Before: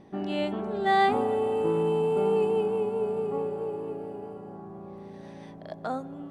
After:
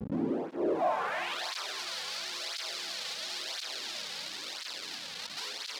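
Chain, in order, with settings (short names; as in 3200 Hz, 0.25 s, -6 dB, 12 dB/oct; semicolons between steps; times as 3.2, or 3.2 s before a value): cycle switcher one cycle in 3, inverted; in parallel at +3 dB: compressor, threshold -38 dBFS, peak gain reduction 18 dB; on the sum: limiter -21 dBFS, peak gain reduction 9.5 dB; frequency shift +30 Hz; Schmitt trigger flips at -37.5 dBFS; band-pass sweep 250 Hz -> 4000 Hz, 0.6–1.58; speed mistake 44.1 kHz file played as 48 kHz; narrowing echo 0.282 s, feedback 75%, band-pass 1600 Hz, level -7.5 dB; tape flanging out of phase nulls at 0.97 Hz, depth 3.3 ms; gain +8 dB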